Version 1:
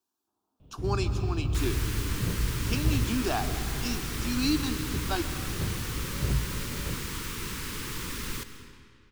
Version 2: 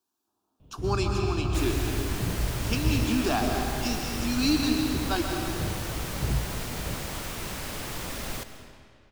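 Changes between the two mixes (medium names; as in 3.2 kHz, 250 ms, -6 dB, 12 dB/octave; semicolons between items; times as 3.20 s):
speech: send +11.0 dB; second sound: remove Butterworth band-stop 670 Hz, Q 1.3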